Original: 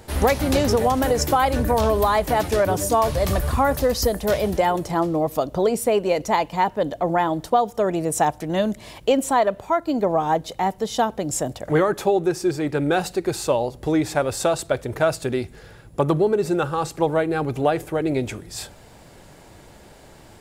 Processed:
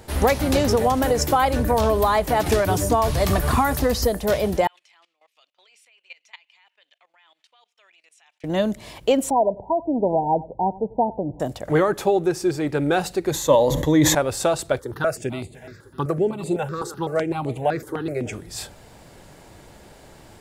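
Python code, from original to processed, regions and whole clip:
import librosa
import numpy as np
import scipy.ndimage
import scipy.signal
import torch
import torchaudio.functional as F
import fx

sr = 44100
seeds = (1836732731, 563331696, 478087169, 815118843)

y = fx.chain(x, sr, fx.notch(hz=540.0, q=6.0),
    fx.band_squash(depth_pct=100), at=(2.46, 4.03))
y = fx.chain(y, sr, fx.ladder_bandpass(hz=2900.0, resonance_pct=55),
    fx.level_steps(step_db=19), at=(4.67, 8.44))
y = fx.chain(y, sr, fx.brickwall_lowpass(high_hz=1000.0),
    fx.echo_single(ms=93, db=-19.5), at=(9.3, 11.4))
y = fx.chain(y, sr, fx.ripple_eq(per_octave=1.1, db=12),
    fx.sustainer(db_per_s=41.0), at=(13.31, 14.15))
y = fx.chain(y, sr, fx.highpass(hz=83.0, slope=12),
    fx.echo_feedback(ms=304, feedback_pct=37, wet_db=-16),
    fx.phaser_held(hz=7.9, low_hz=680.0, high_hz=5500.0), at=(14.79, 18.33))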